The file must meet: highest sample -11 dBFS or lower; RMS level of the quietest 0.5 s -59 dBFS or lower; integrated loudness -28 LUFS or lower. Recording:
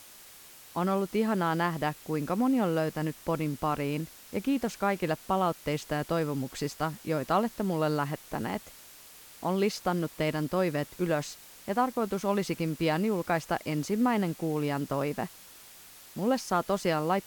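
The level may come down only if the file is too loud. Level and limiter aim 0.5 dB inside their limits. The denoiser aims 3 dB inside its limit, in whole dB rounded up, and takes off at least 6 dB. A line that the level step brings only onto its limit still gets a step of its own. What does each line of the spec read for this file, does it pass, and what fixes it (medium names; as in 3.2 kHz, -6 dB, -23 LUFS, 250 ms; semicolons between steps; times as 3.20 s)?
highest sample -13.5 dBFS: pass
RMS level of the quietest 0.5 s -51 dBFS: fail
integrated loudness -30.0 LUFS: pass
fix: noise reduction 11 dB, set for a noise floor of -51 dBFS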